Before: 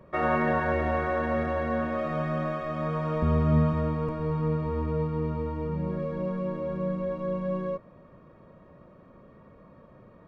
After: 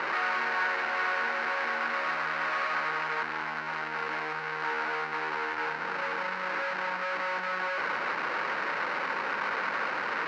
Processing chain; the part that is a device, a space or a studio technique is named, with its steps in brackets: 4.4–5.02 low shelf 97 Hz -4.5 dB; home computer beeper (infinite clipping; speaker cabinet 600–4000 Hz, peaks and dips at 630 Hz -8 dB, 900 Hz +4 dB, 1500 Hz +9 dB, 2100 Hz +4 dB, 3400 Hz -10 dB)

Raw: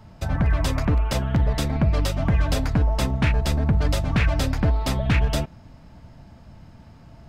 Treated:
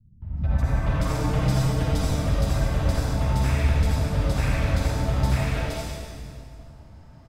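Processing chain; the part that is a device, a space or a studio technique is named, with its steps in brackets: 0.77–1.69 comb 6.5 ms, depth 86%; stairwell (reverb RT60 2.1 s, pre-delay 47 ms, DRR -6.5 dB); three bands offset in time lows, mids, highs 0.22/0.37 s, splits 220/3200 Hz; gain -8.5 dB

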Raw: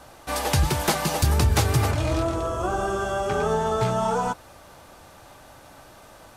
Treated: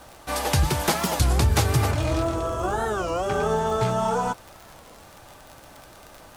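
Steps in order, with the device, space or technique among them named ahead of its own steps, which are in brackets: warped LP (record warp 33 1/3 rpm, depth 250 cents; crackle 49/s -32 dBFS; pink noise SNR 32 dB)

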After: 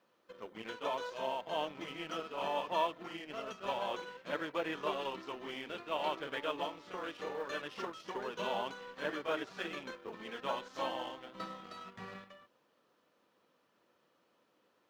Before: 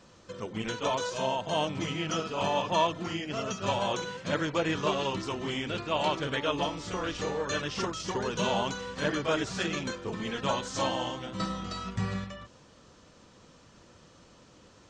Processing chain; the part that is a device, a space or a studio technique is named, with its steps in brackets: phone line with mismatched companding (BPF 320–3200 Hz; G.711 law mismatch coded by A); gain -5.5 dB

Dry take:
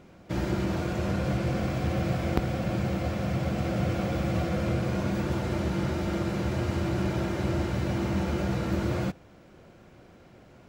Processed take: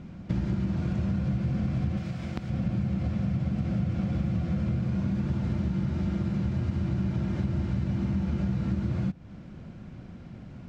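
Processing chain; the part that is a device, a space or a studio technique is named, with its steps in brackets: jukebox (LPF 6200 Hz 12 dB/oct; resonant low shelf 290 Hz +10 dB, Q 1.5; compressor 5:1, threshold -27 dBFS, peak gain reduction 15 dB); 1.97–2.5 tilt +2 dB/oct; gain +1 dB

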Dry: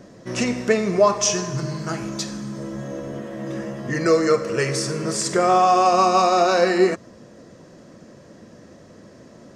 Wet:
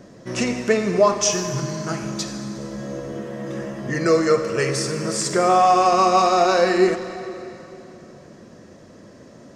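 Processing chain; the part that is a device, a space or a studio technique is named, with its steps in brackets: saturated reverb return (on a send at -8 dB: reverb RT60 2.9 s, pre-delay 54 ms + soft clip -15.5 dBFS, distortion -12 dB)

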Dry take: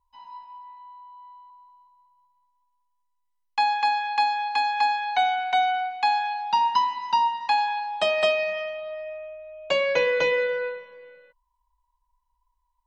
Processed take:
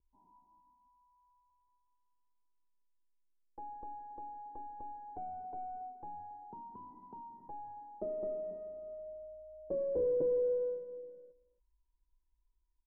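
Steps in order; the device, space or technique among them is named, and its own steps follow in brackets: LPF 2100 Hz; LPF 2400 Hz; outdoor echo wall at 47 m, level -18 dB; overdriven synthesiser ladder filter (soft clip -24.5 dBFS, distortion -11 dB; ladder low-pass 440 Hz, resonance 45%); gain +7.5 dB

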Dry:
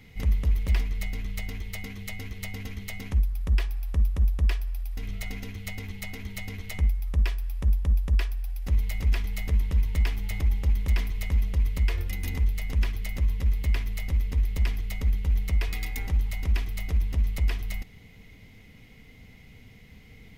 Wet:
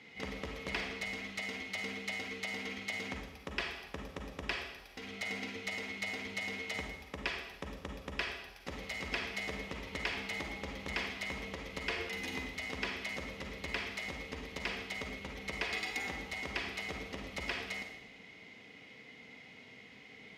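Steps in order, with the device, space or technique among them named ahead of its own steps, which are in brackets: supermarket ceiling speaker (BPF 330–5300 Hz; reverb RT60 0.95 s, pre-delay 37 ms, DRR 2 dB); gain +1 dB

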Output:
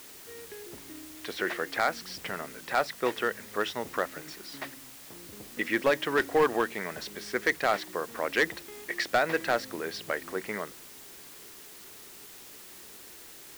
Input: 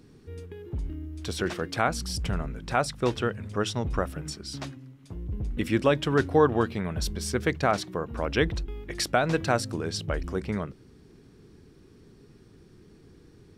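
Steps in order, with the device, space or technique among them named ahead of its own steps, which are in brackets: drive-through speaker (BPF 380–3700 Hz; bell 1900 Hz +10 dB 0.37 oct; hard clip -17 dBFS, distortion -13 dB; white noise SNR 16 dB)

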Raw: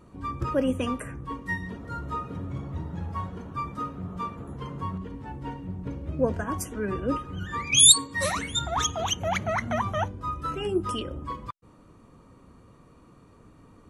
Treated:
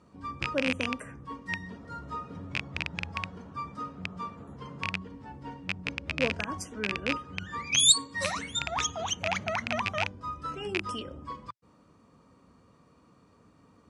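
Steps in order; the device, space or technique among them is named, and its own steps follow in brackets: car door speaker with a rattle (rattling part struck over -28 dBFS, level -10 dBFS; speaker cabinet 86–9100 Hz, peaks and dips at 120 Hz -6 dB, 350 Hz -5 dB, 5000 Hz +7 dB); gain -4.5 dB

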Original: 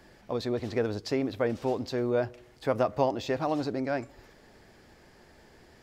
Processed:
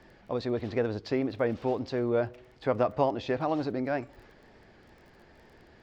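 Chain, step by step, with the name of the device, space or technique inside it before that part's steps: lo-fi chain (LPF 3900 Hz 12 dB/oct; wow and flutter; crackle 21/s -49 dBFS)

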